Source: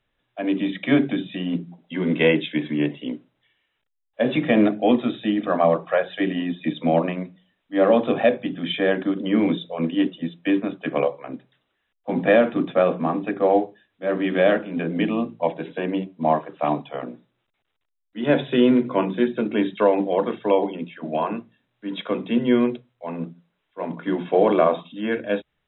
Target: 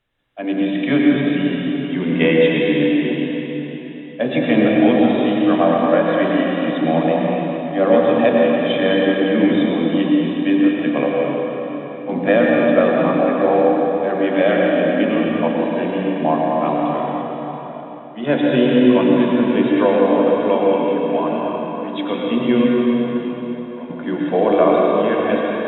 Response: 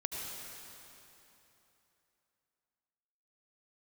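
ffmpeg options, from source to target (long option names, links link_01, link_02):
-filter_complex "[0:a]asettb=1/sr,asplit=3[link_01][link_02][link_03];[link_01]atrim=end=22.644[link_04];[link_02]atrim=start=22.64:end=23.9,asetpts=PTS-STARTPTS,afade=type=in:duration=0.004:curve=qsin,afade=type=out:start_time=1.256:duration=0.004:curve=qsin,acompressor=threshold=-40dB:ratio=2.5[link_05];[link_03]atrim=start=23.896[link_06];[link_04][link_05]acrossfade=duration=0.004:curve1=hsin:curve2=qsin[link_07];[link_07][link_06]acrossfade=duration=0.004:curve1=qsin:curve2=hsin[link_08];[1:a]atrim=start_sample=2205,asetrate=33957,aresample=44100[link_09];[link_08][link_09]afir=irnorm=-1:irlink=0,volume=1dB"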